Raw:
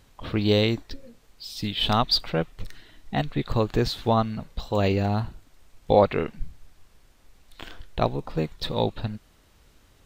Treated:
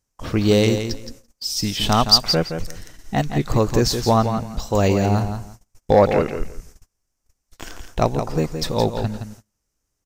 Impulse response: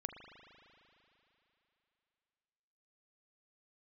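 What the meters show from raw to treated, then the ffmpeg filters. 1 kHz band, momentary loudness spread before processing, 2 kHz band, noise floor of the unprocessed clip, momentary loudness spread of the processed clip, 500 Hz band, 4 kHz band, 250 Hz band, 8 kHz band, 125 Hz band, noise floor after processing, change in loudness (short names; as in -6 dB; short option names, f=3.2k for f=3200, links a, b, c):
+5.0 dB, 23 LU, +4.0 dB, -59 dBFS, 17 LU, +5.5 dB, +6.5 dB, +6.0 dB, n/a, +5.5 dB, -77 dBFS, +5.5 dB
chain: -filter_complex "[0:a]asplit=2[a][b];[b]aeval=exprs='0.562*sin(PI/2*1.78*val(0)/0.562)':c=same,volume=-8dB[c];[a][c]amix=inputs=2:normalize=0,highshelf=f=4.7k:t=q:w=3:g=7,aecho=1:1:169|338|507:0.398|0.0717|0.0129,agate=range=-27dB:threshold=-38dB:ratio=16:detection=peak,volume=-1dB"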